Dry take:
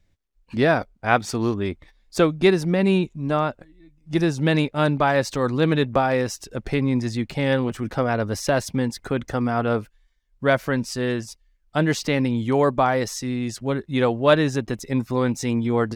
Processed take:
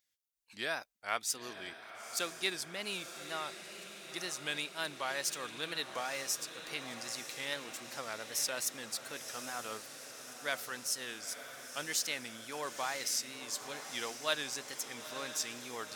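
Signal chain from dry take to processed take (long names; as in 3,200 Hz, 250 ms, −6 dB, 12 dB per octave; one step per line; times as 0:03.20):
tape wow and flutter 130 cents
first difference
feedback delay with all-pass diffusion 950 ms, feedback 67%, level −10 dB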